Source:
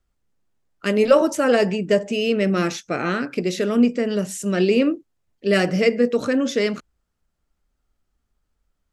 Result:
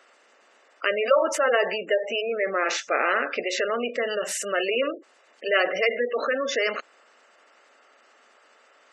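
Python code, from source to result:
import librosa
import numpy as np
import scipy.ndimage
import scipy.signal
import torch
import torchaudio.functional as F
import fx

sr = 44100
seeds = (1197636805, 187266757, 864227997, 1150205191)

y = fx.bin_compress(x, sr, power=0.6)
y = scipy.signal.sosfilt(scipy.signal.butter(2, 750.0, 'highpass', fs=sr, output='sos'), y)
y = fx.spec_gate(y, sr, threshold_db=-15, keep='strong')
y = fx.cheby1_lowpass(y, sr, hz=2500.0, order=10, at=(2.2, 2.64), fade=0.02)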